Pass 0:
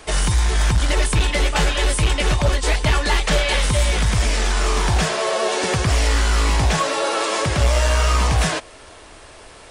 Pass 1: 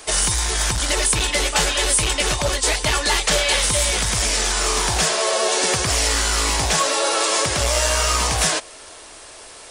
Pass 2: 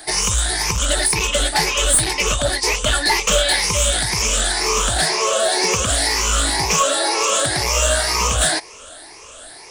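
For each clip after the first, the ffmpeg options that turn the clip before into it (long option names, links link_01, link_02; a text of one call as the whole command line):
ffmpeg -i in.wav -af "bass=frequency=250:gain=-8,treble=frequency=4000:gain=9" out.wav
ffmpeg -i in.wav -af "afftfilt=real='re*pow(10,14/40*sin(2*PI*(0.8*log(max(b,1)*sr/1024/100)/log(2)-(2)*(pts-256)/sr)))':imag='im*pow(10,14/40*sin(2*PI*(0.8*log(max(b,1)*sr/1024/100)/log(2)-(2)*(pts-256)/sr)))':win_size=1024:overlap=0.75,aeval=exprs='clip(val(0),-1,0.316)':channel_layout=same,volume=-1dB" out.wav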